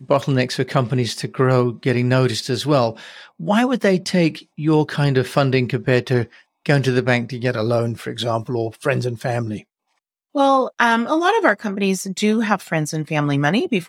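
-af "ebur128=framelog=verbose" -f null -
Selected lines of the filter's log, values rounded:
Integrated loudness:
  I:         -19.3 LUFS
  Threshold: -29.5 LUFS
Loudness range:
  LRA:         3.1 LU
  Threshold: -39.6 LUFS
  LRA low:   -21.7 LUFS
  LRA high:  -18.6 LUFS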